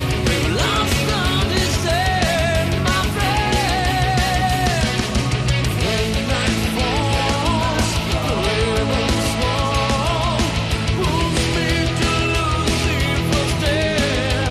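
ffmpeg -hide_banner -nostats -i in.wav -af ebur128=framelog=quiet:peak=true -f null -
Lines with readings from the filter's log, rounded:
Integrated loudness:
  I:         -18.3 LUFS
  Threshold: -28.3 LUFS
Loudness range:
  LRA:         1.0 LU
  Threshold: -38.4 LUFS
  LRA low:   -18.8 LUFS
  LRA high:  -17.8 LUFS
True peak:
  Peak:       -7.6 dBFS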